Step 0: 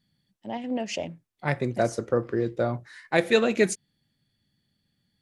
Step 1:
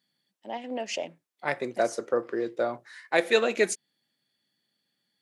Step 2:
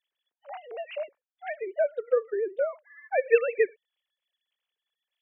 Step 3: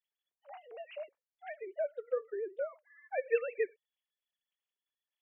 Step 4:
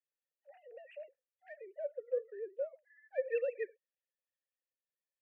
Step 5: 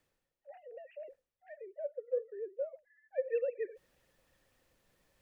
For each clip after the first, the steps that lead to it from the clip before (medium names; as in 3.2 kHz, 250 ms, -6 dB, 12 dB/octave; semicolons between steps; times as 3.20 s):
high-pass 370 Hz 12 dB/octave
formants replaced by sine waves
flange 0.77 Hz, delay 2 ms, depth 2 ms, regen -68%; trim -5.5 dB
local Wiener filter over 9 samples; transient shaper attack -5 dB, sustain +2 dB; vowel filter e; trim +5.5 dB
reverse; upward compressor, threshold -43 dBFS; reverse; tilt EQ -3 dB/octave; trim -2 dB